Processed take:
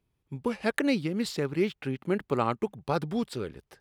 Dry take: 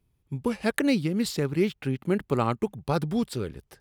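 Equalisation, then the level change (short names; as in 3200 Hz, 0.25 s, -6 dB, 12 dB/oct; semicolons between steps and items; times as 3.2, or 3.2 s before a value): low shelf 200 Hz -8.5 dB; high shelf 6600 Hz -9 dB; 0.0 dB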